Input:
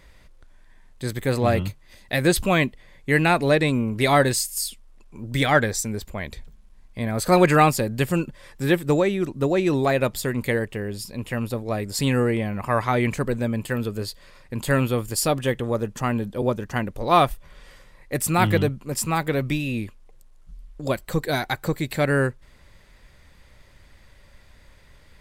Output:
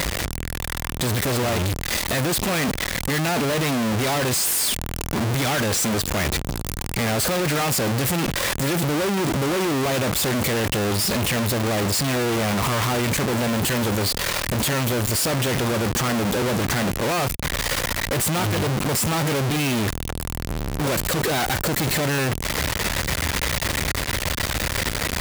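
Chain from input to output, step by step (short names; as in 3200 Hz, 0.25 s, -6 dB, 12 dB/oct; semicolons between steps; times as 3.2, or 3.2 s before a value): infinite clipping; HPF 55 Hz; gain +2.5 dB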